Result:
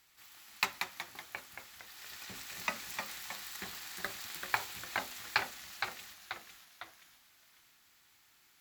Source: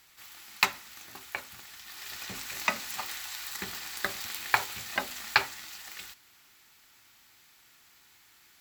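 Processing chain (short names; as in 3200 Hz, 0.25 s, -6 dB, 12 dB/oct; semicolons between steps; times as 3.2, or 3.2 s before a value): echoes that change speed 0.147 s, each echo -1 st, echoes 3, each echo -6 dB; gain -7.5 dB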